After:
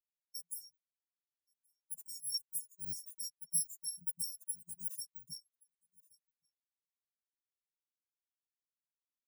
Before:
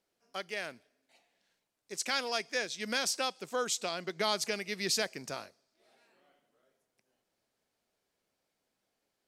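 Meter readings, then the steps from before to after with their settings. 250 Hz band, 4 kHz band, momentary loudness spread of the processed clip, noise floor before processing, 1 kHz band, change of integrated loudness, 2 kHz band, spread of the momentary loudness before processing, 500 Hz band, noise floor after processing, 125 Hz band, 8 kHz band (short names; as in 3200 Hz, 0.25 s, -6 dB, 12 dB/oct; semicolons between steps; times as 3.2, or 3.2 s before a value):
-20.5 dB, -11.0 dB, 14 LU, -83 dBFS, under -40 dB, -6.0 dB, under -40 dB, 12 LU, under -40 dB, under -85 dBFS, -9.0 dB, -2.0 dB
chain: FFT order left unsorted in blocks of 128 samples; in parallel at -5 dB: overloaded stage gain 29.5 dB; on the sum: Chebyshev band-stop 320–5100 Hz, order 5; on a send: echo 1.123 s -19.5 dB; on the sum: compressor 2.5:1, threshold -41 dBFS, peak gain reduction 10.5 dB; reverb removal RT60 1.4 s; bell 93 Hz -5.5 dB 0.33 oct; spectral expander 2.5:1; gain +4 dB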